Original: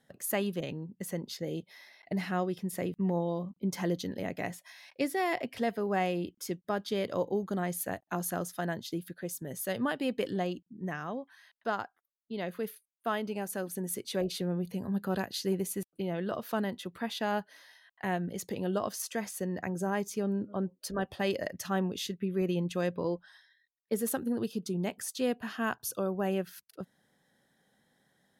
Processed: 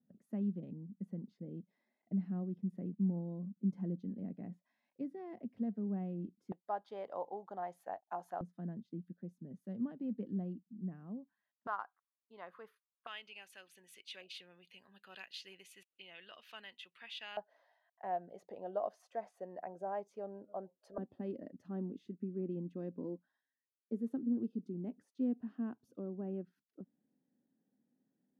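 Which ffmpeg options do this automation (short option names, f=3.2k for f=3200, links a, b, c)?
-af "asetnsamples=n=441:p=0,asendcmd='6.52 bandpass f 800;8.41 bandpass f 210;11.67 bandpass f 1100;13.07 bandpass f 2700;17.37 bandpass f 680;20.98 bandpass f 260',bandpass=f=210:t=q:w=3.8:csg=0"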